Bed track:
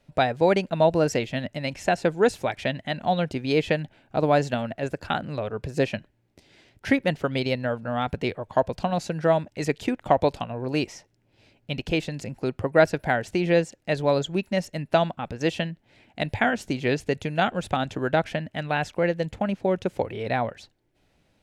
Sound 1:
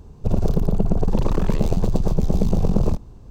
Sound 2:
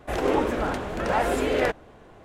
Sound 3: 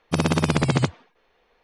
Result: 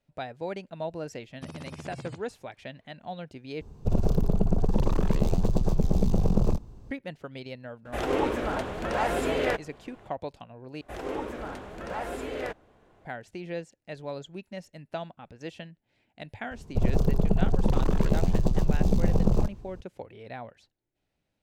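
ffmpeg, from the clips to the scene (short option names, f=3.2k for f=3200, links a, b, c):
-filter_complex "[1:a]asplit=2[a][b];[2:a]asplit=2[c][d];[0:a]volume=-14.5dB[e];[3:a]acompressor=threshold=-25dB:ratio=6:attack=3.2:release=140:knee=1:detection=peak[f];[c]equalizer=f=3k:w=1.5:g=2[g];[e]asplit=3[h][i][j];[h]atrim=end=3.614[k];[a]atrim=end=3.3,asetpts=PTS-STARTPTS,volume=-4.5dB[l];[i]atrim=start=6.906:end=10.814[m];[d]atrim=end=2.24,asetpts=PTS-STARTPTS,volume=-10.5dB[n];[j]atrim=start=13.046[o];[f]atrim=end=1.63,asetpts=PTS-STARTPTS,volume=-11.5dB,afade=t=in:d=0.004:c=hsin,afade=t=out:st=1.626:d=0.004:c=hsin,adelay=1300[p];[g]atrim=end=2.24,asetpts=PTS-STARTPTS,volume=-3.5dB,afade=t=in:d=0.004:c=hsin,afade=t=out:st=2.236:d=0.004:c=hsin,adelay=7850[q];[b]atrim=end=3.3,asetpts=PTS-STARTPTS,volume=-4dB,afade=t=in:d=0.004:c=hsin,afade=t=out:st=3.296:d=0.004:c=hsin,adelay=16510[r];[k][l]acrossfade=d=0.004:c1=hsin:c2=hsin[s];[s][m]acrossfade=d=0.004:c1=hsin:c2=hsin[t];[t][n]acrossfade=d=0.004:c1=hsin:c2=hsin[u];[u][o]acrossfade=d=0.004:c1=hsin:c2=hsin[v];[v][p][q][r]amix=inputs=4:normalize=0"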